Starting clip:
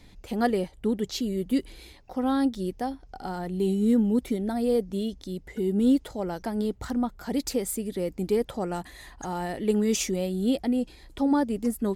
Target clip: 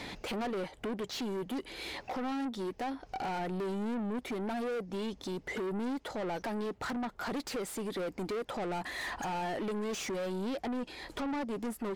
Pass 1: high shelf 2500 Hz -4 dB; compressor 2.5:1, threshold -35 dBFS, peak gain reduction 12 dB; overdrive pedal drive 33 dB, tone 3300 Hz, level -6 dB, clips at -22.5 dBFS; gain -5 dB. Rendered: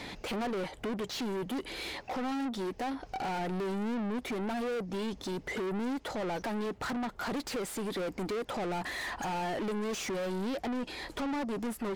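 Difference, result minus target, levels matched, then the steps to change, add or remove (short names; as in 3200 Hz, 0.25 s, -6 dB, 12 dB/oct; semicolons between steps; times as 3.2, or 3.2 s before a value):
compressor: peak gain reduction -6.5 dB
change: compressor 2.5:1, threshold -45.5 dBFS, peak gain reduction 18 dB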